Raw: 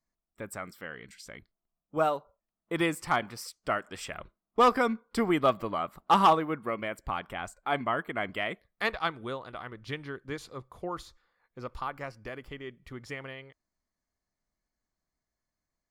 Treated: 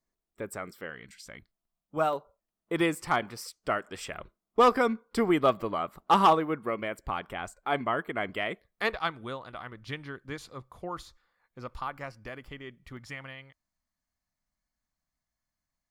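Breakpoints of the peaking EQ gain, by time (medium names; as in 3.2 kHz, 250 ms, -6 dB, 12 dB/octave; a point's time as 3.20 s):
peaking EQ 410 Hz 0.67 oct
+7 dB
from 0.90 s -3.5 dB
from 2.13 s +3.5 dB
from 8.99 s -4 dB
from 12.97 s -12 dB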